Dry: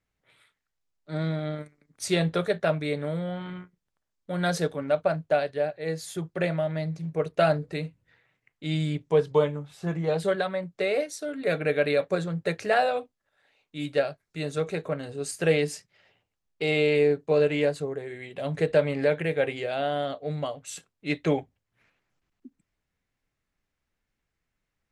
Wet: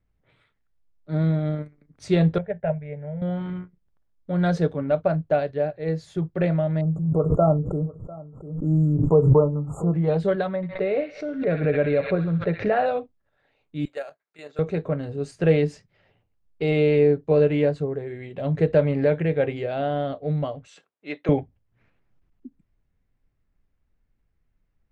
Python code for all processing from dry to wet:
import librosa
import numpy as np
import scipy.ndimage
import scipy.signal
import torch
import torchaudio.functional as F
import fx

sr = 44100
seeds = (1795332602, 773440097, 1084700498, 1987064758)

y = fx.chain(x, sr, fx.air_absorb(metres=390.0),
    fx.fixed_phaser(hz=1200.0, stages=6),
    fx.upward_expand(threshold_db=-35.0, expansion=1.5), at=(2.38, 3.22))
y = fx.chain(y, sr, fx.brickwall_bandstop(low_hz=1400.0, high_hz=6700.0),
    fx.echo_single(ms=697, db=-20.5),
    fx.pre_swell(db_per_s=67.0), at=(6.81, 9.94))
y = fx.chain(y, sr, fx.air_absorb(metres=280.0),
    fx.echo_wet_highpass(ms=64, feedback_pct=51, hz=1600.0, wet_db=-3),
    fx.pre_swell(db_per_s=120.0), at=(10.56, 12.86))
y = fx.chain(y, sr, fx.highpass(hz=720.0, slope=12),
    fx.level_steps(step_db=10),
    fx.resample_bad(factor=4, down='filtered', up='hold'), at=(13.85, 14.59))
y = fx.chain(y, sr, fx.highpass(hz=530.0, slope=12),
    fx.high_shelf(hz=8000.0, db=-11.0), at=(20.67, 21.29))
y = scipy.signal.sosfilt(scipy.signal.butter(2, 6300.0, 'lowpass', fs=sr, output='sos'), y)
y = fx.tilt_eq(y, sr, slope=-3.0)